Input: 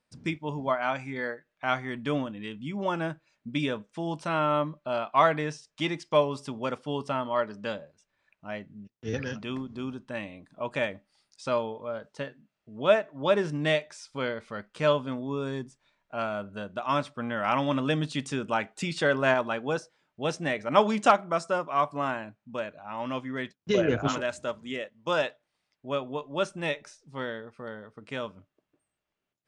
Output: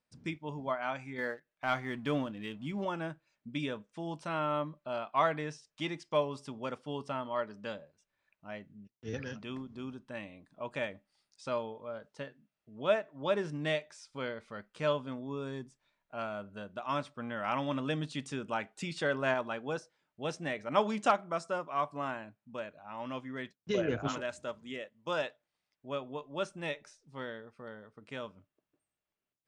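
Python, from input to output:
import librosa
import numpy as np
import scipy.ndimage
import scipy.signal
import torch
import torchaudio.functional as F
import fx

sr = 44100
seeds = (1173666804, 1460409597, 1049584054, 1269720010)

y = fx.leveller(x, sr, passes=1, at=(1.18, 2.85))
y = y * librosa.db_to_amplitude(-7.0)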